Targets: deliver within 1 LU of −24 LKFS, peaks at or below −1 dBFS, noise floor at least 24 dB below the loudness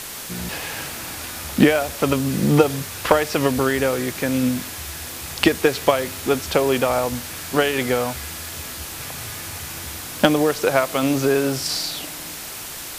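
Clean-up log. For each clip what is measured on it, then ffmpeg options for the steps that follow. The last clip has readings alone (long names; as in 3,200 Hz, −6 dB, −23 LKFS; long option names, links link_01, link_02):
background noise floor −33 dBFS; target noise floor −46 dBFS; integrated loudness −21.5 LKFS; sample peak −2.0 dBFS; target loudness −24.0 LKFS
→ -af "afftdn=noise_reduction=13:noise_floor=-33"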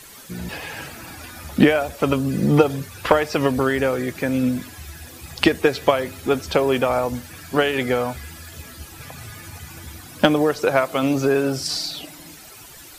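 background noise floor −42 dBFS; target noise floor −45 dBFS
→ -af "afftdn=noise_reduction=6:noise_floor=-42"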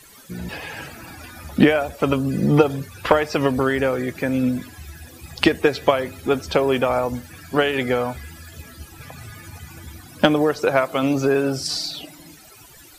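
background noise floor −46 dBFS; integrated loudness −21.0 LKFS; sample peak −2.5 dBFS; target loudness −24.0 LKFS
→ -af "volume=-3dB"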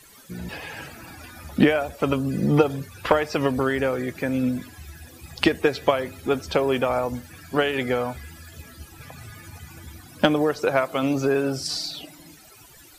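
integrated loudness −24.0 LKFS; sample peak −5.5 dBFS; background noise floor −49 dBFS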